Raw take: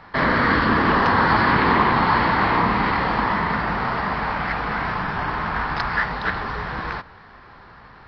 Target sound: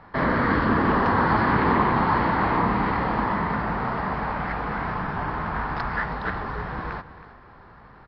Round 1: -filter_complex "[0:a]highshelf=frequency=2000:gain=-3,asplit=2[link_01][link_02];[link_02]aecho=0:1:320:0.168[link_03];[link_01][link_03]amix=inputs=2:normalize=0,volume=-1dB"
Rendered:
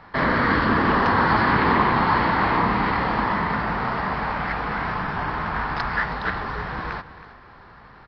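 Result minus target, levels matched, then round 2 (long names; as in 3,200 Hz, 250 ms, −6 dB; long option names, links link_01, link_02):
4,000 Hz band +5.0 dB
-filter_complex "[0:a]highshelf=frequency=2000:gain=-12.5,asplit=2[link_01][link_02];[link_02]aecho=0:1:320:0.168[link_03];[link_01][link_03]amix=inputs=2:normalize=0,volume=-1dB"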